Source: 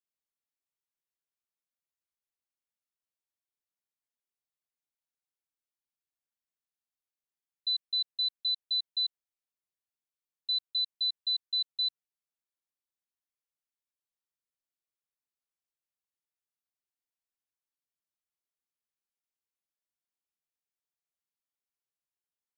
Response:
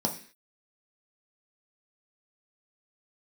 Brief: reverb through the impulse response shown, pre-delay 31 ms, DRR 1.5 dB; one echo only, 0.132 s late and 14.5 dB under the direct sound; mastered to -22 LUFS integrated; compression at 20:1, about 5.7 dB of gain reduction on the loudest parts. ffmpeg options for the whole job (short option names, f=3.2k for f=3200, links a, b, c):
-filter_complex "[0:a]acompressor=threshold=-32dB:ratio=20,aecho=1:1:132:0.188,asplit=2[a][b];[1:a]atrim=start_sample=2205,adelay=31[c];[b][c]afir=irnorm=-1:irlink=0,volume=-8.5dB[d];[a][d]amix=inputs=2:normalize=0,volume=11dB"